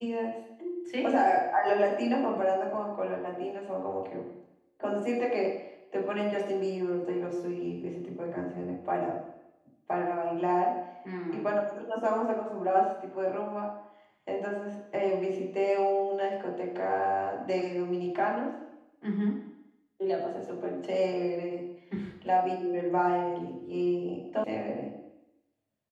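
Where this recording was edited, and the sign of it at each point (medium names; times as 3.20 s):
24.44 s: sound stops dead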